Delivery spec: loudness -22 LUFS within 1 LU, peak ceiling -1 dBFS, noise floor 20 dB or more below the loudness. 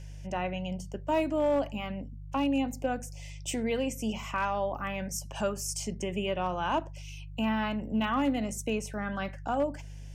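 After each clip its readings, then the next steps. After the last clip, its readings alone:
clipped samples 0.3%; clipping level -20.0 dBFS; hum 50 Hz; highest harmonic 150 Hz; hum level -40 dBFS; loudness -32.0 LUFS; peak level -20.0 dBFS; loudness target -22.0 LUFS
-> clip repair -20 dBFS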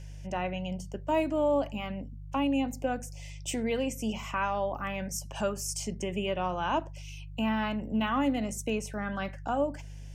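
clipped samples 0.0%; hum 50 Hz; highest harmonic 150 Hz; hum level -40 dBFS
-> de-hum 50 Hz, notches 3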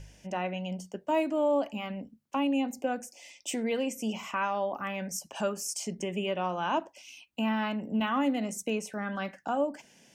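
hum not found; loudness -32.0 LUFS; peak level -17.5 dBFS; loudness target -22.0 LUFS
-> trim +10 dB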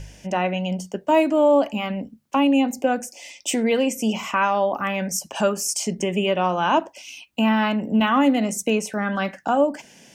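loudness -22.0 LUFS; peak level -7.5 dBFS; noise floor -53 dBFS

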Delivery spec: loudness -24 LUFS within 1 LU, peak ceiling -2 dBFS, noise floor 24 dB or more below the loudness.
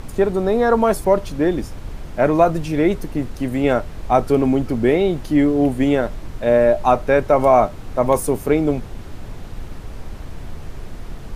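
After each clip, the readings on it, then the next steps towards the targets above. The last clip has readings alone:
noise floor -34 dBFS; noise floor target -42 dBFS; loudness -18.0 LUFS; peak level -2.0 dBFS; loudness target -24.0 LUFS
-> noise print and reduce 8 dB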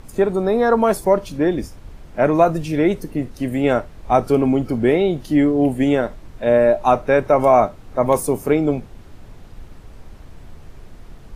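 noise floor -42 dBFS; loudness -18.0 LUFS; peak level -2.0 dBFS; loudness target -24.0 LUFS
-> trim -6 dB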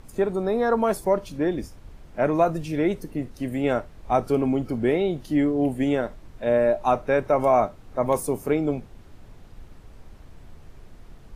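loudness -24.0 LUFS; peak level -8.0 dBFS; noise floor -48 dBFS

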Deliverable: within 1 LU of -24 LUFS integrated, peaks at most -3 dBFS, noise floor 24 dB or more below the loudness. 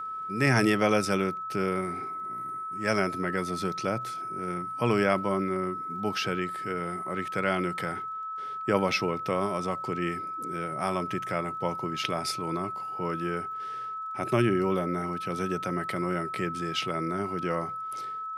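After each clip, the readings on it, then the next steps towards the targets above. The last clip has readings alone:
tick rate 31 per s; steady tone 1.3 kHz; tone level -33 dBFS; loudness -29.5 LUFS; peak level -9.0 dBFS; loudness target -24.0 LUFS
-> de-click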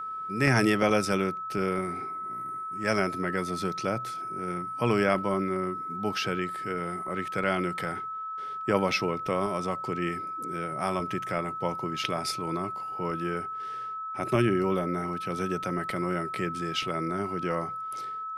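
tick rate 0 per s; steady tone 1.3 kHz; tone level -33 dBFS
-> band-stop 1.3 kHz, Q 30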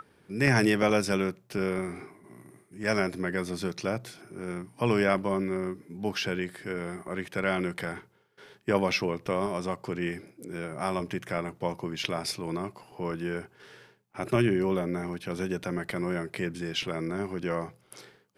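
steady tone not found; loudness -30.5 LUFS; peak level -8.0 dBFS; loudness target -24.0 LUFS
-> trim +6.5 dB; peak limiter -3 dBFS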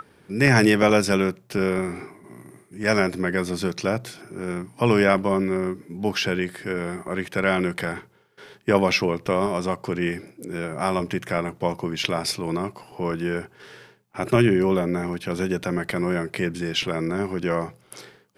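loudness -24.0 LUFS; peak level -3.0 dBFS; noise floor -58 dBFS

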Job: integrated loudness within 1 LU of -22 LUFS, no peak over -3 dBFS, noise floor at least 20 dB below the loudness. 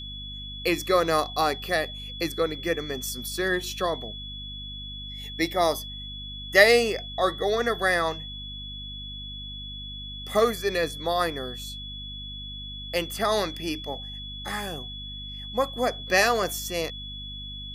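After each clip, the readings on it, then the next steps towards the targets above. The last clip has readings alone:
hum 50 Hz; highest harmonic 250 Hz; hum level -39 dBFS; steady tone 3.4 kHz; tone level -37 dBFS; loudness -27.0 LUFS; peak level -3.0 dBFS; loudness target -22.0 LUFS
-> de-hum 50 Hz, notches 5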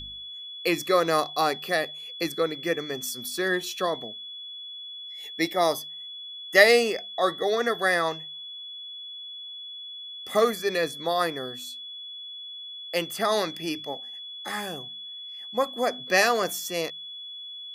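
hum not found; steady tone 3.4 kHz; tone level -37 dBFS
-> band-stop 3.4 kHz, Q 30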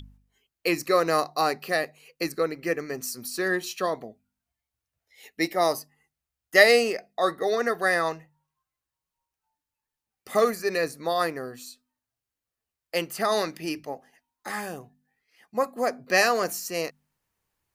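steady tone not found; loudness -25.5 LUFS; peak level -3.0 dBFS; loudness target -22.0 LUFS
-> trim +3.5 dB; peak limiter -3 dBFS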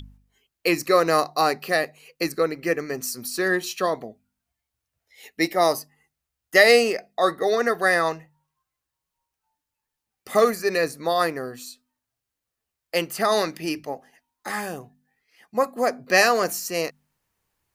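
loudness -22.5 LUFS; peak level -3.0 dBFS; noise floor -85 dBFS

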